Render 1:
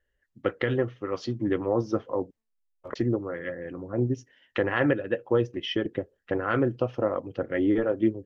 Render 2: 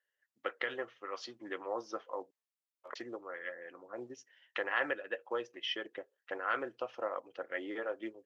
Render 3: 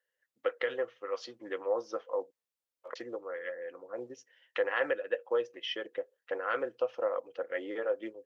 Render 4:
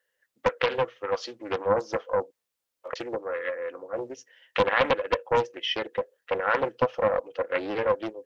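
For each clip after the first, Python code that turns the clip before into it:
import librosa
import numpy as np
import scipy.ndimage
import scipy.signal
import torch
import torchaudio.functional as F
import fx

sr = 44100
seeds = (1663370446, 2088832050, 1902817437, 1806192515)

y1 = scipy.signal.sosfilt(scipy.signal.butter(2, 770.0, 'highpass', fs=sr, output='sos'), x)
y1 = F.gain(torch.from_numpy(y1), -4.0).numpy()
y2 = fx.peak_eq(y1, sr, hz=500.0, db=11.0, octaves=0.28)
y3 = fx.doppler_dist(y2, sr, depth_ms=0.47)
y3 = F.gain(torch.from_numpy(y3), 8.0).numpy()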